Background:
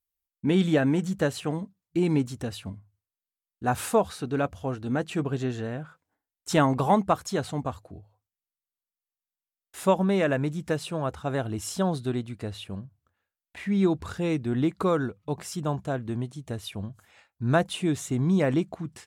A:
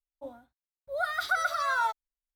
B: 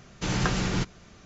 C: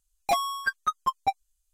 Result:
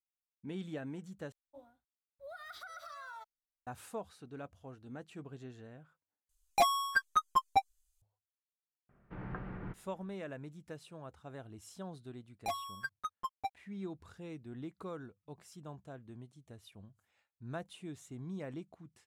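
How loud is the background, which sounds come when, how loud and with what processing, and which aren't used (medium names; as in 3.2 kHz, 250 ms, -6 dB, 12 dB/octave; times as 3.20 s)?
background -19.5 dB
1.32 s: replace with A -13 dB + compression 12:1, threshold -31 dBFS
6.29 s: replace with C -2.5 dB
8.89 s: add B -16 dB + low-pass 1.8 kHz 24 dB/octave
12.17 s: add C -12.5 dB + crossover distortion -53 dBFS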